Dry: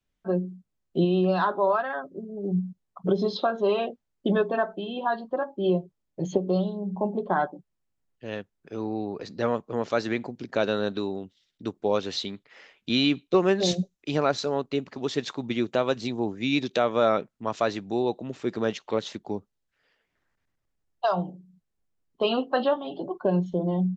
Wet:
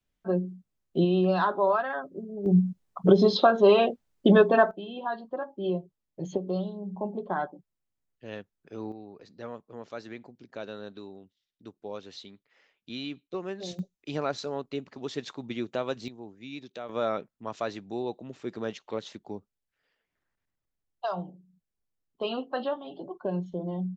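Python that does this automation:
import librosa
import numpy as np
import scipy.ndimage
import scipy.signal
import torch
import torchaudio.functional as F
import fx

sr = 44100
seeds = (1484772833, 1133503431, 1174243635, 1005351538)

y = fx.gain(x, sr, db=fx.steps((0.0, -1.0), (2.46, 5.5), (4.71, -5.5), (8.92, -14.0), (13.79, -6.5), (16.08, -16.0), (16.89, -7.0)))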